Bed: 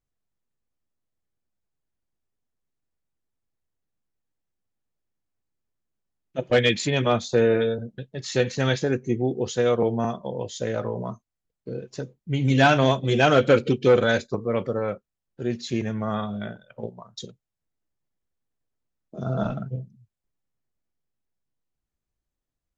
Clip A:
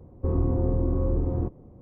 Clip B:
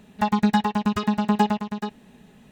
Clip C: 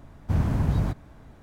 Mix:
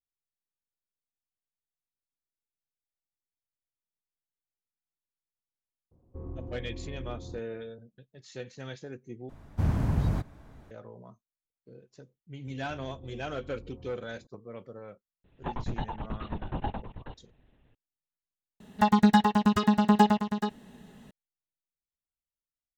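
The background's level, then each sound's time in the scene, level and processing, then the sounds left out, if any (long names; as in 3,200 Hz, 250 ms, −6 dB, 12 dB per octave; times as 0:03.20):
bed −18.5 dB
0:05.91: mix in A −16 dB
0:09.29: overwrite with C −3 dB
0:12.46: mix in A −9.5 dB + downward compressor 3 to 1, threshold −41 dBFS
0:15.24: mix in B −12.5 dB + linear-prediction vocoder at 8 kHz whisper
0:18.60: overwrite with B −0.5 dB + notch filter 2,400 Hz, Q 6.9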